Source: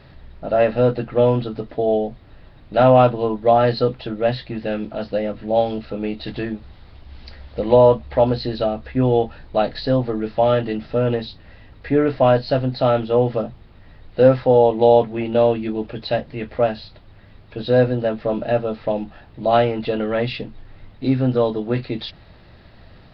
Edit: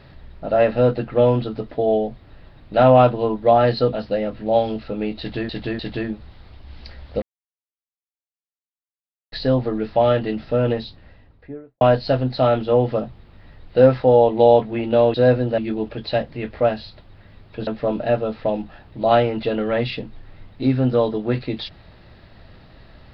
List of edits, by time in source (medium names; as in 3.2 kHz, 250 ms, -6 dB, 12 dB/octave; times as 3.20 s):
3.93–4.95 s: delete
6.21–6.51 s: loop, 3 plays
7.64–9.74 s: mute
11.12–12.23 s: studio fade out
17.65–18.09 s: move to 15.56 s